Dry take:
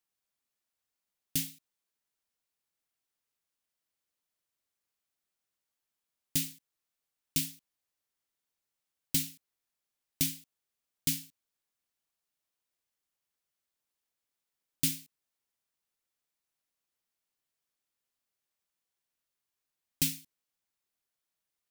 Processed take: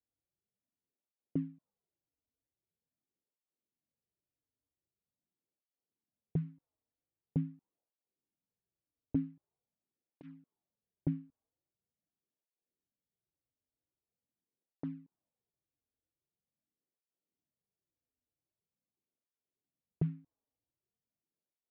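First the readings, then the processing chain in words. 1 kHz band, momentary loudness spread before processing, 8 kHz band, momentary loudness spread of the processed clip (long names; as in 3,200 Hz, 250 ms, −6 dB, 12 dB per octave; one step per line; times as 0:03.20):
can't be measured, 10 LU, below −40 dB, 16 LU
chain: low-pass that shuts in the quiet parts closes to 390 Hz, open at −33.5 dBFS
low-pass filter 1,000 Hz 24 dB per octave
through-zero flanger with one copy inverted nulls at 0.44 Hz, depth 5.9 ms
level +7.5 dB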